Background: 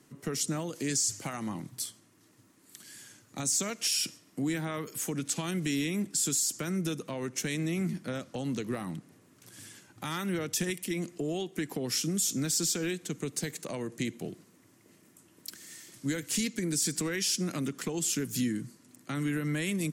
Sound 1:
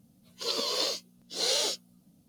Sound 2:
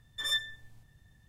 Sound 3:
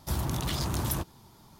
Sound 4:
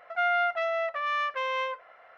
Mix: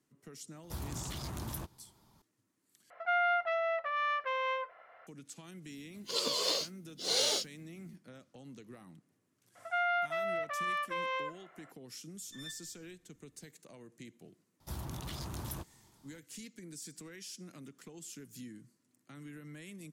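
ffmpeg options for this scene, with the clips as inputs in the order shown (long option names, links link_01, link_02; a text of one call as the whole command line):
ffmpeg -i bed.wav -i cue0.wav -i cue1.wav -i cue2.wav -i cue3.wav -filter_complex "[3:a]asplit=2[link_01][link_02];[4:a]asplit=2[link_03][link_04];[0:a]volume=-17.5dB[link_05];[link_03]highshelf=frequency=5000:gain=-7.5[link_06];[link_05]asplit=2[link_07][link_08];[link_07]atrim=end=2.904[link_09];[link_06]atrim=end=2.17,asetpts=PTS-STARTPTS,volume=-3.5dB[link_10];[link_08]atrim=start=5.066[link_11];[link_01]atrim=end=1.59,asetpts=PTS-STARTPTS,volume=-10.5dB,afade=type=in:duration=0.004:curve=hsin,afade=type=out:start_time=1.586:duration=0.004:curve=hsin,adelay=630[link_12];[1:a]atrim=end=2.28,asetpts=PTS-STARTPTS,volume=-2.5dB,afade=type=in:duration=0.004:curve=hsin,afade=type=out:start_time=2.276:duration=0.004:curve=hsin,adelay=5680[link_13];[link_04]atrim=end=2.17,asetpts=PTS-STARTPTS,volume=-6dB,afade=type=in:duration=0.004:curve=hsin,afade=type=out:start_time=2.166:duration=0.004:curve=hsin,adelay=9550[link_14];[2:a]atrim=end=1.28,asetpts=PTS-STARTPTS,volume=-17dB,afade=type=in:duration=0.004:curve=hsin,afade=type=out:start_time=1.276:duration=0.004:curve=hsin,adelay=12140[link_15];[link_02]atrim=end=1.59,asetpts=PTS-STARTPTS,volume=-11dB,afade=type=in:duration=0.004:curve=hsin,afade=type=out:start_time=1.586:duration=0.004:curve=hsin,adelay=643860S[link_16];[link_09][link_10]acrossfade=duration=0.004:curve1=hsin:curve2=hsin[link_17];[link_17][link_11]acrossfade=duration=0.004:curve1=hsin:curve2=hsin[link_18];[link_18][link_12][link_13][link_14][link_15][link_16]amix=inputs=6:normalize=0" out.wav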